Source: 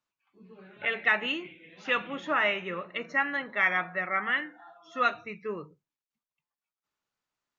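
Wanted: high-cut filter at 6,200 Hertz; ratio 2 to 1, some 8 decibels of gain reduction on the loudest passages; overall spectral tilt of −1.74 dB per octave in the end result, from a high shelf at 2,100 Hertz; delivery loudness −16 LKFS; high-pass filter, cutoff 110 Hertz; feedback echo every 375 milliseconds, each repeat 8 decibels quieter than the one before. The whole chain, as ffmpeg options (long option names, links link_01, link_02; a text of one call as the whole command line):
ffmpeg -i in.wav -af "highpass=110,lowpass=6200,highshelf=frequency=2100:gain=-6.5,acompressor=threshold=-37dB:ratio=2,aecho=1:1:375|750|1125|1500|1875:0.398|0.159|0.0637|0.0255|0.0102,volume=21.5dB" out.wav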